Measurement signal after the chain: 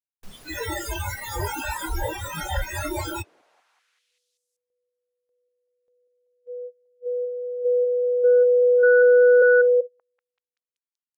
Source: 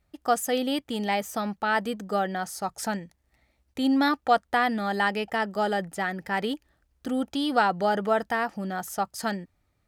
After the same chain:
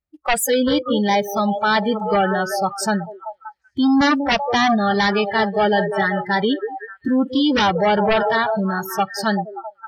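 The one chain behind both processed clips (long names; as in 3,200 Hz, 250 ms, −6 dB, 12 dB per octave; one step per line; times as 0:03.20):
echo through a band-pass that steps 192 ms, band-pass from 430 Hz, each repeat 0.7 octaves, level −5 dB
sine wavefolder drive 12 dB, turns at −8 dBFS
noise reduction from a noise print of the clip's start 30 dB
level −4 dB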